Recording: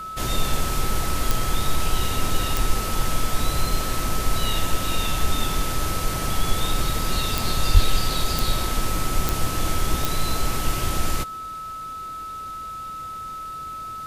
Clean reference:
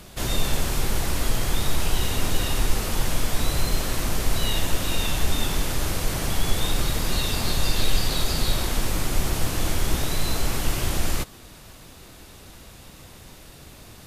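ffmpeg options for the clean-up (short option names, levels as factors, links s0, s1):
-filter_complex "[0:a]adeclick=t=4,bandreject=f=1300:w=30,asplit=3[s0][s1][s2];[s0]afade=t=out:st=7.73:d=0.02[s3];[s1]highpass=f=140:w=0.5412,highpass=f=140:w=1.3066,afade=t=in:st=7.73:d=0.02,afade=t=out:st=7.85:d=0.02[s4];[s2]afade=t=in:st=7.85:d=0.02[s5];[s3][s4][s5]amix=inputs=3:normalize=0"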